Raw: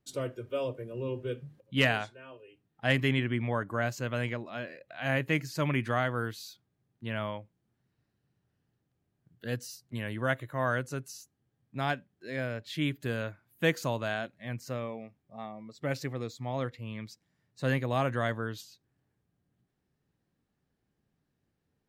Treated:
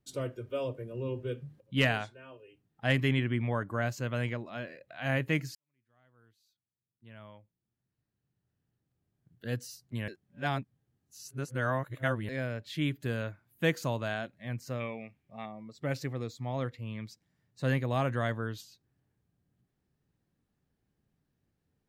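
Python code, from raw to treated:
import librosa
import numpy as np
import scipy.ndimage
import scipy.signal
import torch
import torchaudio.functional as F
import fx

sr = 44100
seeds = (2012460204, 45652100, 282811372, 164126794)

y = fx.peak_eq(x, sr, hz=2400.0, db=12.5, octaves=0.81, at=(14.8, 15.46))
y = fx.edit(y, sr, fx.fade_in_span(start_s=5.55, length_s=3.99, curve='qua'),
    fx.reverse_span(start_s=10.08, length_s=2.21), tone=tone)
y = fx.low_shelf(y, sr, hz=170.0, db=5.0)
y = y * 10.0 ** (-2.0 / 20.0)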